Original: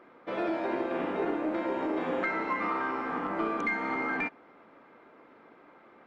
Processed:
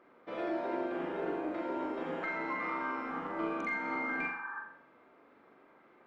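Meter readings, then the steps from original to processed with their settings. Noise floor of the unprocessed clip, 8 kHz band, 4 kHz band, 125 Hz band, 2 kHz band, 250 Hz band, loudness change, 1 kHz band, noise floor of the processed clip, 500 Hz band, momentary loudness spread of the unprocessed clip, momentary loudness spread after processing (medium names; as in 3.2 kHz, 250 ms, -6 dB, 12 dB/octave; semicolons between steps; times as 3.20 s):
-57 dBFS, no reading, -5.5 dB, -5.5 dB, -3.5 dB, -5.0 dB, -5.0 dB, -5.0 dB, -62 dBFS, -5.0 dB, 3 LU, 6 LU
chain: spectral replace 4.22–4.58 s, 800–1800 Hz before; flutter echo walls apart 7.3 m, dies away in 0.57 s; trim -7.5 dB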